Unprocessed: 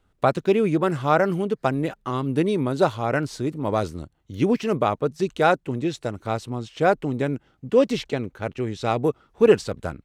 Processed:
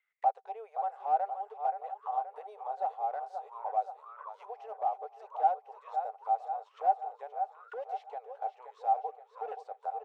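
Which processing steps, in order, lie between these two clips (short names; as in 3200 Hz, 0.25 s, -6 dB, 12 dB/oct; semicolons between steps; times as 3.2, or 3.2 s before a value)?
in parallel at +2 dB: compressor, threshold -27 dBFS, peak gain reduction 16.5 dB; on the sum: brick-wall FIR high-pass 410 Hz; high shelf 7500 Hz +11.5 dB; on a send: feedback echo 0.526 s, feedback 59%, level -10 dB; on the sum: hard clip -13.5 dBFS, distortion -11 dB; auto-wah 770–2100 Hz, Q 21, down, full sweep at -23 dBFS; gain +2 dB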